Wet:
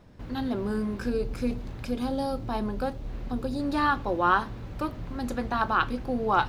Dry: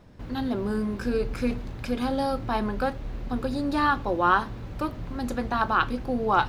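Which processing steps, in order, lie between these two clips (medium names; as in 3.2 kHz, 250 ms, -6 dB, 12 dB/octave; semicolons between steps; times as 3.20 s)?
1.09–3.60 s: dynamic bell 1.7 kHz, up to -7 dB, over -44 dBFS, Q 0.75; trim -1.5 dB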